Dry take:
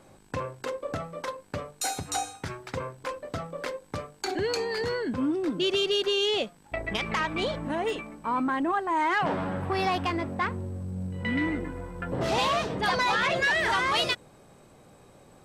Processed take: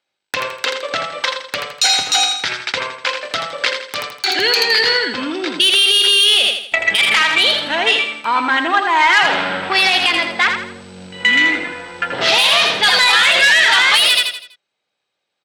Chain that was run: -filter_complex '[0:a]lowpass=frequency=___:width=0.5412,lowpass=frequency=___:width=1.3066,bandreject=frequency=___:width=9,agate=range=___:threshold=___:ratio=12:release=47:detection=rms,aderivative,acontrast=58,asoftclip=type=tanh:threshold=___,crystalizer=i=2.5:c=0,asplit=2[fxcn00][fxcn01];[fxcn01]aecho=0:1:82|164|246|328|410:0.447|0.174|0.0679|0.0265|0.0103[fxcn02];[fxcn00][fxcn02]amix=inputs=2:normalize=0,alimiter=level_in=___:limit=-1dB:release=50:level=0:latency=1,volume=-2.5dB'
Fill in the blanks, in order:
3700, 3700, 1100, -34dB, -47dB, -26dB, 25.5dB